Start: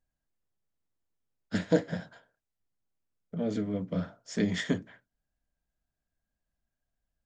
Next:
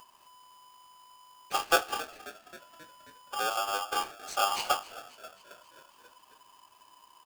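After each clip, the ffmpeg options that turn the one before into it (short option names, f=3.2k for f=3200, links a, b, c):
-filter_complex "[0:a]acompressor=mode=upward:threshold=-38dB:ratio=2.5,asplit=7[a][b][c][d][e][f][g];[b]adelay=268,afreqshift=51,volume=-17.5dB[h];[c]adelay=536,afreqshift=102,volume=-21.7dB[i];[d]adelay=804,afreqshift=153,volume=-25.8dB[j];[e]adelay=1072,afreqshift=204,volume=-30dB[k];[f]adelay=1340,afreqshift=255,volume=-34.1dB[l];[g]adelay=1608,afreqshift=306,volume=-38.3dB[m];[a][h][i][j][k][l][m]amix=inputs=7:normalize=0,aeval=exprs='val(0)*sgn(sin(2*PI*1000*n/s))':c=same"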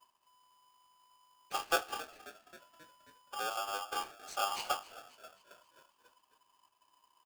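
-af "agate=range=-33dB:threshold=-52dB:ratio=3:detection=peak,volume=-6.5dB"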